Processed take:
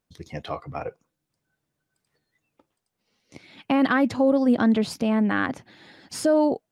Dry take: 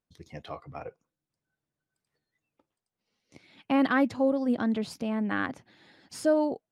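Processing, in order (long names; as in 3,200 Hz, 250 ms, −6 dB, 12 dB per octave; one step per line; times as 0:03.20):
brickwall limiter −20 dBFS, peak gain reduction 6 dB
level +8 dB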